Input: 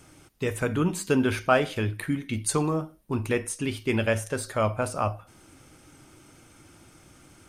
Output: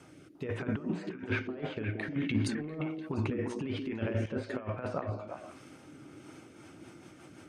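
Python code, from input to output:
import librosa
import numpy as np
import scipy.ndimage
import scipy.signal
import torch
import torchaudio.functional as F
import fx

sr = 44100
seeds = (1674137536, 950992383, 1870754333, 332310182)

y = fx.env_lowpass_down(x, sr, base_hz=2600.0, full_db=-25.0)
y = scipy.signal.sosfilt(scipy.signal.butter(2, 130.0, 'highpass', fs=sr, output='sos'), y)
y = fx.high_shelf(y, sr, hz=5100.0, db=-12.0)
y = fx.over_compress(y, sr, threshold_db=-31.0, ratio=-0.5)
y = fx.rotary_switch(y, sr, hz=1.2, then_hz=6.0, switch_at_s=6.1)
y = fx.echo_stepped(y, sr, ms=174, hz=300.0, octaves=1.4, feedback_pct=70, wet_db=-1.5)
y = fx.sustainer(y, sr, db_per_s=56.0, at=(2.06, 4.26))
y = y * 10.0 ** (-1.5 / 20.0)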